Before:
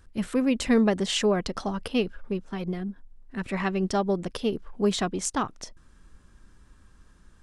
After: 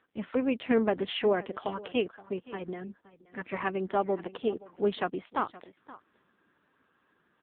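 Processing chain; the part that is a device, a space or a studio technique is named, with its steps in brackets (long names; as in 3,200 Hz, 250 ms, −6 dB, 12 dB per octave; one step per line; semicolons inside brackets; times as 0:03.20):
satellite phone (band-pass filter 320–3,300 Hz; single-tap delay 522 ms −18.5 dB; AMR narrowband 5.9 kbit/s 8,000 Hz)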